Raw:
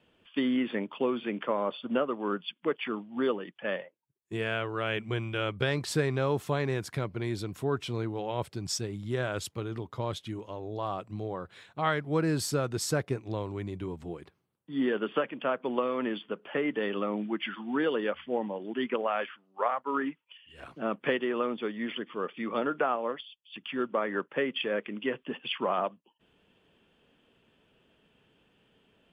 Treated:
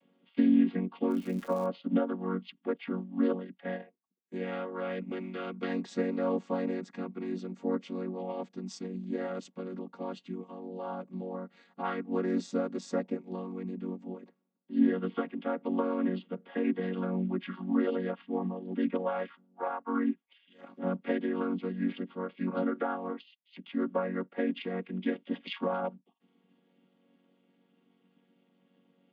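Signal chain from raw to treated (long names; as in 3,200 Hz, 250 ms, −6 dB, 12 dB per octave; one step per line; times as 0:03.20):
channel vocoder with a chord as carrier major triad, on F#3
0:01.10–0:01.65: surface crackle 130 per second → 470 per second −40 dBFS
0:25.03–0:25.68: high-shelf EQ 3,100 Hz +8.5 dB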